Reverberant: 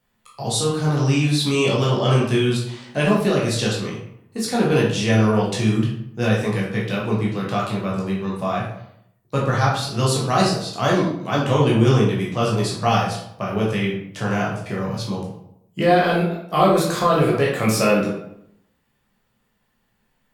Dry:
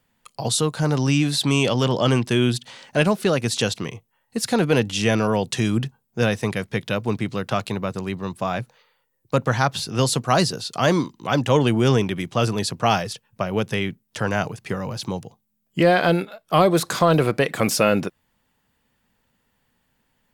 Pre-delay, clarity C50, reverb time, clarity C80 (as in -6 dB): 11 ms, 3.5 dB, 0.75 s, 7.0 dB